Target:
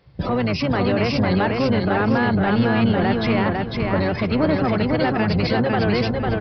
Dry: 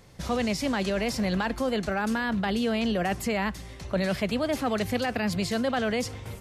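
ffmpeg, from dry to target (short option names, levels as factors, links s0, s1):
-filter_complex "[0:a]afftdn=nr=24:nf=-37,highpass=150,equalizer=f=3400:w=1.4:g=-3,asplit=2[s0][s1];[s1]acompressor=threshold=0.00794:ratio=12,volume=1.19[s2];[s0][s2]amix=inputs=2:normalize=0,alimiter=level_in=1.19:limit=0.0631:level=0:latency=1:release=127,volume=0.841,acontrast=81,asplit=3[s3][s4][s5];[s4]asetrate=22050,aresample=44100,atempo=2,volume=0.631[s6];[s5]asetrate=33038,aresample=44100,atempo=1.33484,volume=0.2[s7];[s3][s6][s7]amix=inputs=3:normalize=0,asoftclip=type=tanh:threshold=0.1,asplit=2[s8][s9];[s9]aecho=0:1:501|1002|1503|2004:0.708|0.219|0.068|0.0211[s10];[s8][s10]amix=inputs=2:normalize=0,aresample=11025,aresample=44100,volume=2"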